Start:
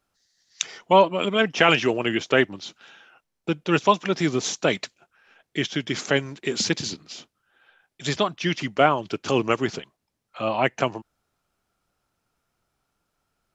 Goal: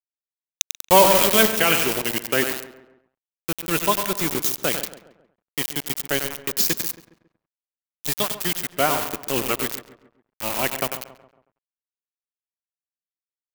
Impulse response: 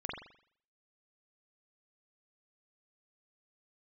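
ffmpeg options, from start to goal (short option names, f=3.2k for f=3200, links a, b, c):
-filter_complex "[0:a]asplit=2[a][b];[b]aecho=0:1:96|192|288|384|480|576:0.422|0.223|0.118|0.0628|0.0333|0.0176[c];[a][c]amix=inputs=2:normalize=0,aeval=exprs='val(0)*gte(abs(val(0)),0.0841)':c=same,asplit=3[d][e][f];[d]afade=t=out:st=0.87:d=0.02[g];[e]acontrast=78,afade=t=in:st=0.87:d=0.02,afade=t=out:st=1.47:d=0.02[h];[f]afade=t=in:st=1.47:d=0.02[i];[g][h][i]amix=inputs=3:normalize=0,aemphasis=mode=production:type=50fm,asplit=2[j][k];[k]adelay=137,lowpass=f=2k:p=1,volume=-13dB,asplit=2[l][m];[m]adelay=137,lowpass=f=2k:p=1,volume=0.45,asplit=2[n][o];[o]adelay=137,lowpass=f=2k:p=1,volume=0.45,asplit=2[p][q];[q]adelay=137,lowpass=f=2k:p=1,volume=0.45[r];[l][n][p][r]amix=inputs=4:normalize=0[s];[j][s]amix=inputs=2:normalize=0,volume=-3.5dB"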